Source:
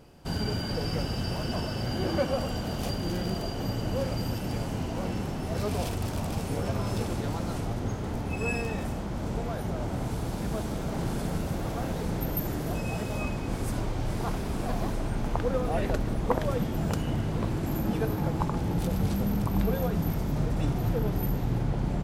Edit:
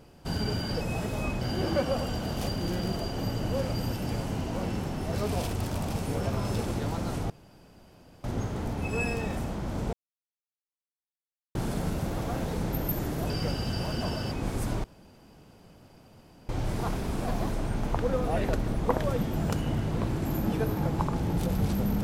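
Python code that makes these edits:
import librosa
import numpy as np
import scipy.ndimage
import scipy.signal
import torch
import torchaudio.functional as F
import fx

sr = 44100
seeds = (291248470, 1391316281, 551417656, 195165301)

y = fx.edit(x, sr, fx.swap(start_s=0.81, length_s=1.02, other_s=12.78, other_length_s=0.6),
    fx.insert_room_tone(at_s=7.72, length_s=0.94),
    fx.silence(start_s=9.41, length_s=1.62),
    fx.insert_room_tone(at_s=13.9, length_s=1.65), tone=tone)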